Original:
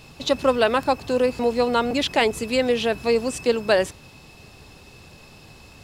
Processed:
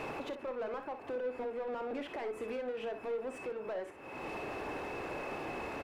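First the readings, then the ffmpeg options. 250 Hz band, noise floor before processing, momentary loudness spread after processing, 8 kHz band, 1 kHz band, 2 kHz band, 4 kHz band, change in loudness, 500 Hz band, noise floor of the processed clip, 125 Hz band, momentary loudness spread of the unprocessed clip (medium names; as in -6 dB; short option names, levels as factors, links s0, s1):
-17.5 dB, -48 dBFS, 3 LU, under -20 dB, -15.5 dB, -16.0 dB, -25.0 dB, -18.0 dB, -16.0 dB, -49 dBFS, -16.0 dB, 3 LU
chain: -filter_complex "[0:a]firequalizer=gain_entry='entry(170,0);entry(300,12);entry(1100,9);entry(2200,10);entry(3900,-8);entry(9900,4)':delay=0.05:min_phase=1,acompressor=threshold=0.00891:ratio=3,alimiter=level_in=3.35:limit=0.0631:level=0:latency=1:release=373,volume=0.299,asplit=2[s0][s1];[s1]highpass=f=720:p=1,volume=7.94,asoftclip=type=tanh:threshold=0.0188[s2];[s0][s2]amix=inputs=2:normalize=0,lowpass=f=1100:p=1,volume=0.501,aecho=1:1:32|60:0.251|0.335,volume=1.41"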